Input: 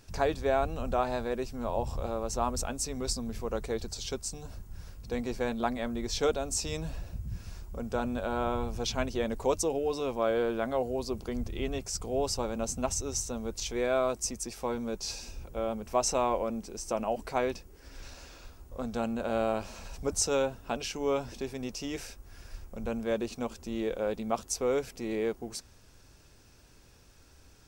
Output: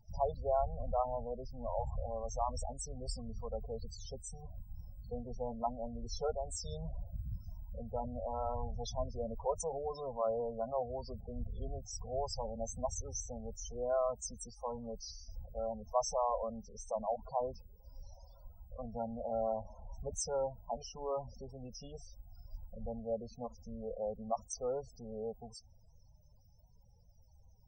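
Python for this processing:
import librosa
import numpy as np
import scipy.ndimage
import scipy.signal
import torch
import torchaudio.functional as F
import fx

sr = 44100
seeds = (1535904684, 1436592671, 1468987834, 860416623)

y = fx.fixed_phaser(x, sr, hz=790.0, stages=4)
y = fx.mod_noise(y, sr, seeds[0], snr_db=33)
y = fx.spec_topn(y, sr, count=16)
y = y * librosa.db_to_amplitude(-3.0)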